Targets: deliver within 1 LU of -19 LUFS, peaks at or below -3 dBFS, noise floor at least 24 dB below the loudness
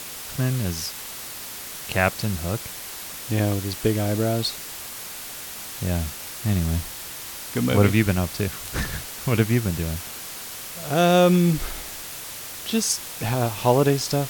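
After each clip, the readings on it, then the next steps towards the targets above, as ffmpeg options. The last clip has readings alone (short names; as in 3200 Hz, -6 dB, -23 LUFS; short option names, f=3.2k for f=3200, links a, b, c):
noise floor -36 dBFS; noise floor target -49 dBFS; loudness -24.5 LUFS; peak -4.5 dBFS; loudness target -19.0 LUFS
-> -af "afftdn=nr=13:nf=-36"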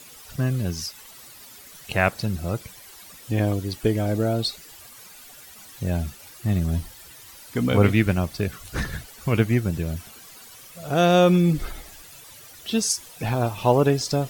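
noise floor -46 dBFS; noise floor target -48 dBFS
-> -af "afftdn=nr=6:nf=-46"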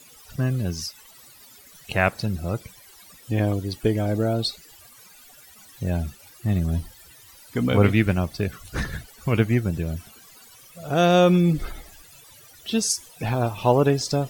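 noise floor -50 dBFS; loudness -23.5 LUFS; peak -4.5 dBFS; loudness target -19.0 LUFS
-> -af "volume=4.5dB,alimiter=limit=-3dB:level=0:latency=1"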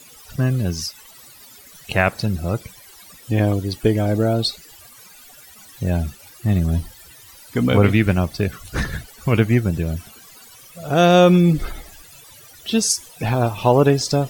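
loudness -19.5 LUFS; peak -3.0 dBFS; noise floor -45 dBFS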